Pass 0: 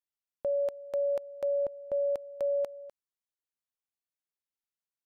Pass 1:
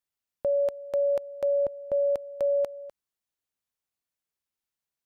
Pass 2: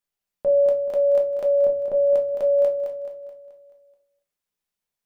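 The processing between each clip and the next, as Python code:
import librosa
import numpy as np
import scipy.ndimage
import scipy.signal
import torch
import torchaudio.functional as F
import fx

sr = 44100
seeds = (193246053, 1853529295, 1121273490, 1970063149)

y1 = fx.peak_eq(x, sr, hz=74.0, db=4.0, octaves=2.8)
y1 = y1 * 10.0 ** (4.0 / 20.0)
y2 = fx.echo_feedback(y1, sr, ms=215, feedback_pct=49, wet_db=-7.5)
y2 = fx.room_shoebox(y2, sr, seeds[0], volume_m3=170.0, walls='furnished', distance_m=1.3)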